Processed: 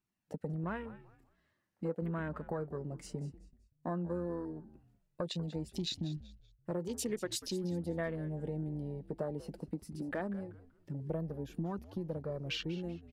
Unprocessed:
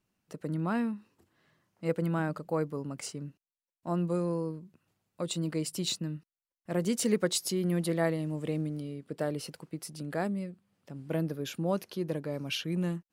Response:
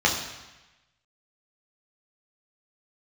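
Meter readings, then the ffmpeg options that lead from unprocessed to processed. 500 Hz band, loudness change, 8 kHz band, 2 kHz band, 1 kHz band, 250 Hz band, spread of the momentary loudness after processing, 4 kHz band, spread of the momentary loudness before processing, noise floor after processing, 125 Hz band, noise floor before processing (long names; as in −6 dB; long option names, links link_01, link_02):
−6.5 dB, −6.5 dB, −9.5 dB, −6.0 dB, −6.5 dB, −7.0 dB, 8 LU, −5.5 dB, 13 LU, −79 dBFS, −5.0 dB, below −85 dBFS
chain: -filter_complex "[0:a]afwtdn=0.01,equalizer=frequency=1800:width_type=o:width=0.29:gain=4.5,acompressor=threshold=-43dB:ratio=4,flanger=delay=0.8:depth=4.7:regen=-49:speed=0.17:shape=triangular,asplit=2[link_01][link_02];[link_02]asplit=3[link_03][link_04][link_05];[link_03]adelay=191,afreqshift=-98,volume=-16dB[link_06];[link_04]adelay=382,afreqshift=-196,volume=-25.9dB[link_07];[link_05]adelay=573,afreqshift=-294,volume=-35.8dB[link_08];[link_06][link_07][link_08]amix=inputs=3:normalize=0[link_09];[link_01][link_09]amix=inputs=2:normalize=0,volume=10.5dB"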